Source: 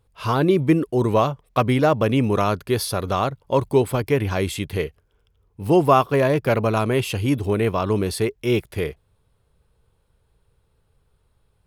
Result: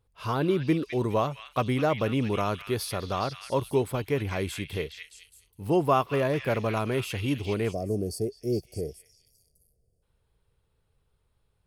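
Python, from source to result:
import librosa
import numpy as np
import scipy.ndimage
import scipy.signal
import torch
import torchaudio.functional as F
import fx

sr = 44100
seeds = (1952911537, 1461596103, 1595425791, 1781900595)

y = fx.echo_stepped(x, sr, ms=208, hz=2500.0, octaves=0.7, feedback_pct=70, wet_db=-2)
y = fx.spec_box(y, sr, start_s=7.73, length_s=2.3, low_hz=760.0, high_hz=4400.0, gain_db=-25)
y = F.gain(torch.from_numpy(y), -7.5).numpy()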